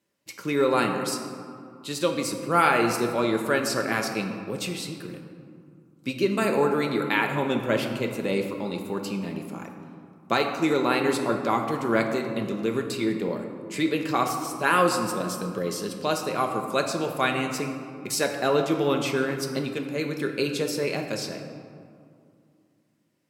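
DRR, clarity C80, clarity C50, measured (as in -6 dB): 3.0 dB, 7.0 dB, 5.5 dB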